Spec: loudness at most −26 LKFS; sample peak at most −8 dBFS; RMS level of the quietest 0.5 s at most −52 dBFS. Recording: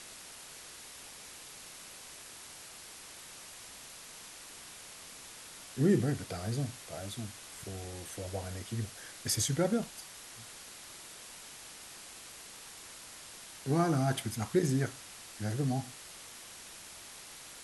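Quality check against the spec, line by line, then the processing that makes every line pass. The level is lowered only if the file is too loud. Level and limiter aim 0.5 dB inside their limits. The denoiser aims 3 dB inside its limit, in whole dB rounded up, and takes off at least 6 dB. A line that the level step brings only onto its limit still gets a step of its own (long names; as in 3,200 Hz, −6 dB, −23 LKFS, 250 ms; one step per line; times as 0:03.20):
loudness −37.5 LKFS: in spec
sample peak −15.5 dBFS: in spec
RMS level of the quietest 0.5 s −50 dBFS: out of spec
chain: broadband denoise 6 dB, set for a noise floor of −50 dBFS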